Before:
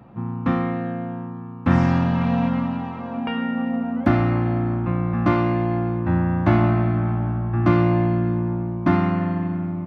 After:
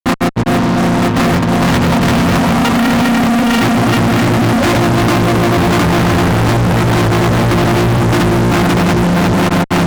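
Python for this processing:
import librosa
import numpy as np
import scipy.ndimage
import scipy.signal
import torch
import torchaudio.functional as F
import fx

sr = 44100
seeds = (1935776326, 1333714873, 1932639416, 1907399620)

y = fx.hum_notches(x, sr, base_hz=60, count=3)
y = fx.granulator(y, sr, seeds[0], grain_ms=100.0, per_s=20.0, spray_ms=770.0, spread_st=0)
y = fx.fuzz(y, sr, gain_db=43.0, gate_db=-46.0)
y = y * 10.0 ** (3.0 / 20.0)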